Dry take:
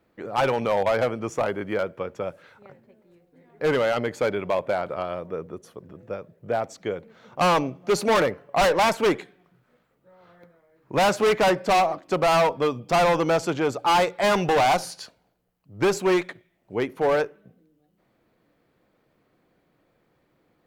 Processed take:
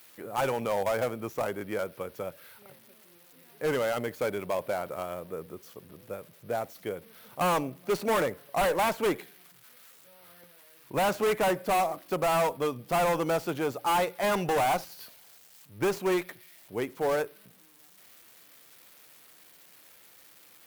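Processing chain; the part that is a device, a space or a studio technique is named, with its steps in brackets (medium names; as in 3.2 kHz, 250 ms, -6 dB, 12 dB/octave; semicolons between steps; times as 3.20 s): budget class-D amplifier (dead-time distortion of 0.057 ms; zero-crossing glitches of -32.5 dBFS); trim -6 dB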